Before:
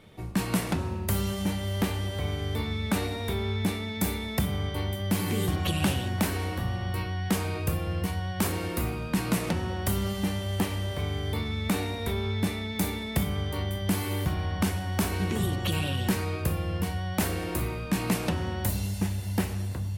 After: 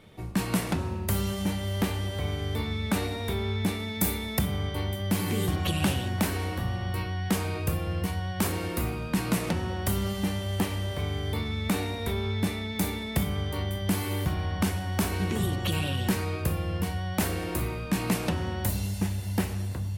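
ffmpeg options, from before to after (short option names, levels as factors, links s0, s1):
-filter_complex "[0:a]asettb=1/sr,asplit=3[s0][s1][s2];[s0]atrim=end=3.794[s3];[s1]atrim=start=3.79:end=4.39,asetpts=PTS-STARTPTS,afade=t=in:d=0.004:c=qsin,afade=t=out:st=0.596:d=0.004:c=qsin,highshelf=f=9000:g=8[s4];[s2]atrim=start=4.386[s5];[s3][s4]acrossfade=d=0.004:c1=hsin:c2=qsin[s6];[s6][s5]acrossfade=d=0.004:c1=qsin:c2=hsin"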